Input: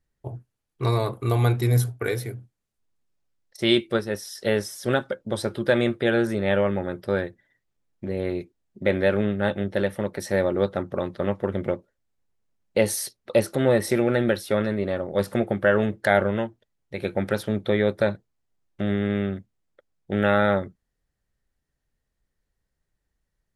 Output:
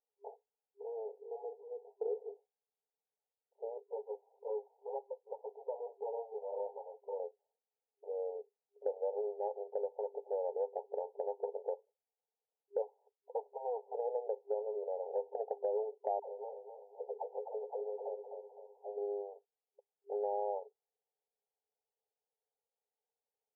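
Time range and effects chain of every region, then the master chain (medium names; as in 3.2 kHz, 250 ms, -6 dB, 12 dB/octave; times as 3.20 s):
0.82–1.85 s: ladder band-pass 500 Hz, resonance 45% + hard clipper -33 dBFS
3.92–7.20 s: partial rectifier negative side -12 dB + flange 1.9 Hz, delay 0.1 ms, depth 5.9 ms, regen -43%
12.82–13.95 s: four-pole ladder low-pass 1.3 kHz, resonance 65% + loudspeaker Doppler distortion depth 0.72 ms
16.19–18.98 s: phase dispersion lows, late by 104 ms, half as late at 630 Hz + compression 12:1, threshold -28 dBFS + bit-crushed delay 256 ms, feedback 55%, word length 8-bit, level -6 dB
whole clip: FFT band-pass 400–980 Hz; comb 2.5 ms, depth 50%; compression 2.5:1, threshold -29 dBFS; trim -6 dB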